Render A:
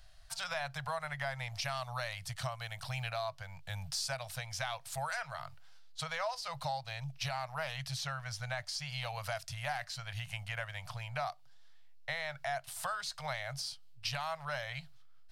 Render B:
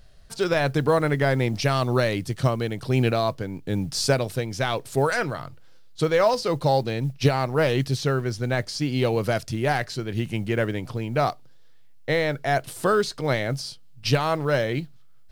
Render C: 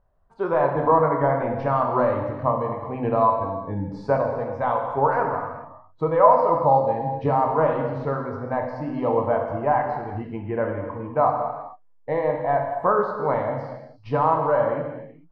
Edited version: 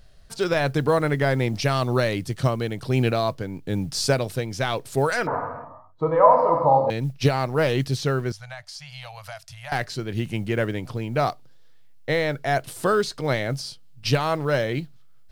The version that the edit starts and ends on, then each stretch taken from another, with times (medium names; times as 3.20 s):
B
5.27–6.90 s: from C
8.32–9.72 s: from A